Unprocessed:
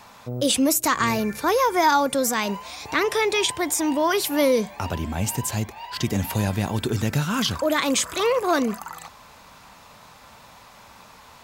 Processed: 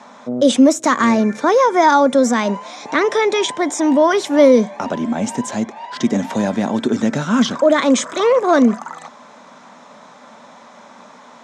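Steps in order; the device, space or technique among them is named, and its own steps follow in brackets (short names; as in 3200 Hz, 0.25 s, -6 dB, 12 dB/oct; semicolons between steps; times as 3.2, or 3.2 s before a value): television speaker (speaker cabinet 180–6700 Hz, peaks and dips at 240 Hz +9 dB, 590 Hz +6 dB, 2700 Hz -9 dB, 4600 Hz -10 dB); gain +5.5 dB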